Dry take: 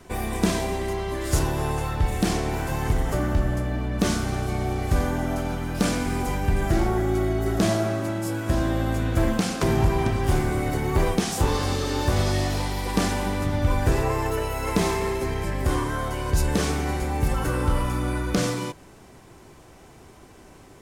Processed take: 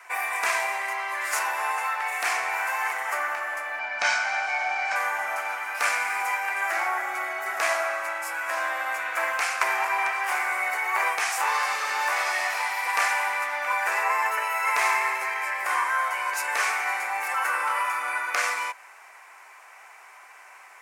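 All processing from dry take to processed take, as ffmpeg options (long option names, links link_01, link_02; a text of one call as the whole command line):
ffmpeg -i in.wav -filter_complex "[0:a]asettb=1/sr,asplit=3[link_01][link_02][link_03];[link_01]atrim=end=3.794[link_04];[link_02]atrim=start=3.79:end=4.96,asetpts=PTS-STARTPTS,afade=type=in:duration=0.004:curve=qsin,afade=type=out:start_time=1.166:duration=0.004:curve=qsin,lowpass=frequency=5700:width=0.5412,lowpass=frequency=5700:width=1.3066,bass=frequency=250:gain=8,treble=frequency=4000:gain=6,aecho=1:1:1.3:0.59,atrim=end_sample=51597[link_05];[link_03]atrim=start=4.956[link_06];[link_04][link_05]acrossfade=duration=0.004:curve1=hsin:curve2=qsin[link_07];[link_07][link_06]acrossfade=duration=0.004:curve1=qsin:curve2=hsin,highpass=frequency=860:width=0.5412,highpass=frequency=860:width=1.3066,highshelf=frequency=2800:width_type=q:width=3:gain=-6,volume=6.5dB" out.wav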